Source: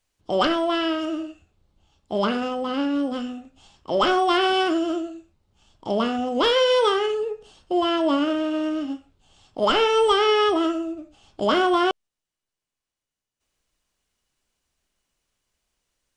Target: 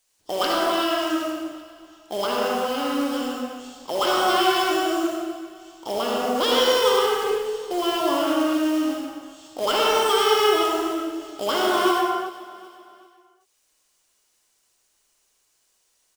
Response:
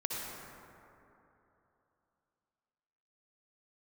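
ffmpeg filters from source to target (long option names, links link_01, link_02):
-filter_complex "[0:a]bass=frequency=250:gain=-14,treble=frequency=4000:gain=10,asplit=2[link_01][link_02];[link_02]acompressor=threshold=-30dB:ratio=8,volume=3dB[link_03];[link_01][link_03]amix=inputs=2:normalize=0,acrusher=bits=3:mode=log:mix=0:aa=0.000001,aecho=1:1:385|770|1155:0.126|0.0516|0.0212[link_04];[1:a]atrim=start_sample=2205,afade=type=out:start_time=0.44:duration=0.01,atrim=end_sample=19845[link_05];[link_04][link_05]afir=irnorm=-1:irlink=0,volume=-5.5dB"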